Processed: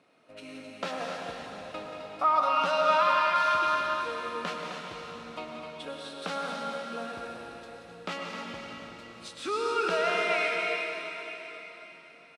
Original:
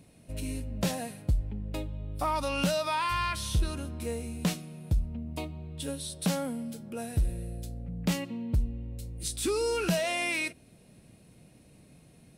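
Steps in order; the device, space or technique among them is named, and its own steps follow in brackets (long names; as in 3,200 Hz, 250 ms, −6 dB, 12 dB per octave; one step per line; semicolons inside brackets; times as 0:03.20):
station announcement (band-pass filter 480–3,500 Hz; parametric band 1,300 Hz +11 dB 0.32 octaves; loudspeakers that aren't time-aligned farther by 62 metres −10 dB, 89 metres −8 dB; convolution reverb RT60 4.1 s, pre-delay 92 ms, DRR 0 dB)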